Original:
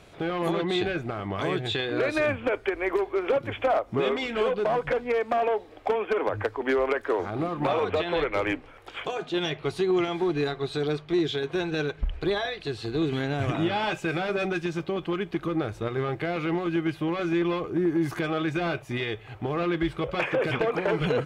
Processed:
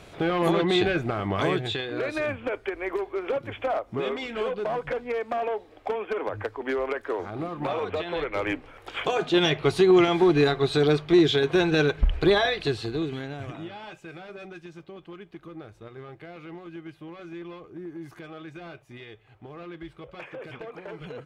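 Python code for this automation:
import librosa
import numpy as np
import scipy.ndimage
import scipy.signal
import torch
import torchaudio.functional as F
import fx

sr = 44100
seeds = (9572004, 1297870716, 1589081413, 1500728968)

y = fx.gain(x, sr, db=fx.line((1.43, 4.0), (1.86, -3.5), (8.22, -3.5), (9.2, 6.5), (12.65, 6.5), (13.07, -4.0), (13.77, -14.0)))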